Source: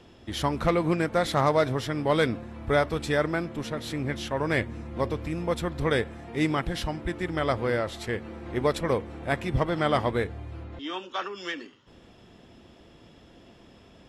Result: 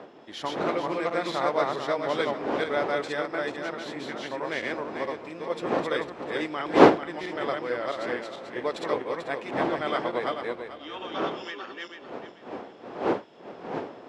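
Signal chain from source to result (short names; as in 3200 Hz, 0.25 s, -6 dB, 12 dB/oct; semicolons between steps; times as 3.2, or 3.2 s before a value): regenerating reverse delay 0.22 s, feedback 47%, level -0.5 dB; wind noise 470 Hz -23 dBFS; BPF 340–5900 Hz; gain -4.5 dB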